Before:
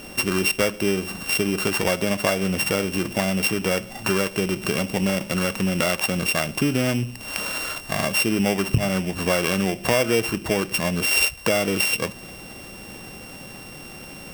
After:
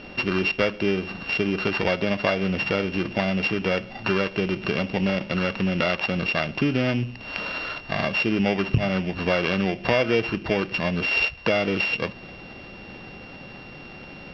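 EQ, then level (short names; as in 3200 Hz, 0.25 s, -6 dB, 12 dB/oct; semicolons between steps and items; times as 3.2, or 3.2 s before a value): elliptic low-pass 4600 Hz, stop band 60 dB; notch 1100 Hz, Q 29; 0.0 dB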